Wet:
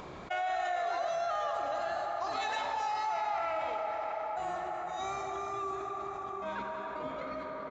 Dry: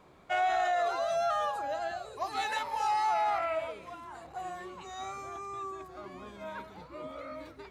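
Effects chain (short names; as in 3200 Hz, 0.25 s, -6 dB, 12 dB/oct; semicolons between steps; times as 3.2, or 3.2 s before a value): gate -40 dBFS, range -42 dB; upward compressor, threshold -49 dBFS; tape echo 92 ms, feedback 88%, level -12 dB, low-pass 5200 Hz; on a send at -6 dB: reverb RT60 5.5 s, pre-delay 8 ms; on the sum: downsampling 16000 Hz; fast leveller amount 70%; gain -7 dB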